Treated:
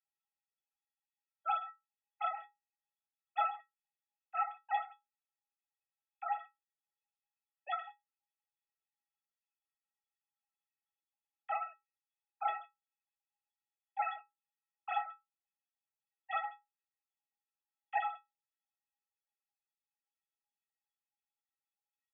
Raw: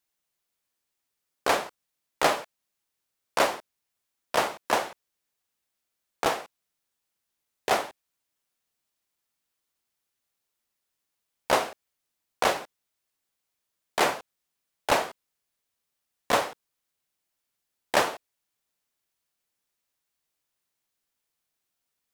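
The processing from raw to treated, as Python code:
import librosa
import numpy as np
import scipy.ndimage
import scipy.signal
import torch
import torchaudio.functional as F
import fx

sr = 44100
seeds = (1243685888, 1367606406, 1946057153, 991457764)

y = fx.sine_speech(x, sr)
y = fx.stiff_resonator(y, sr, f0_hz=390.0, decay_s=0.25, stiffness=0.03)
y = F.gain(torch.from_numpy(y), 5.0).numpy()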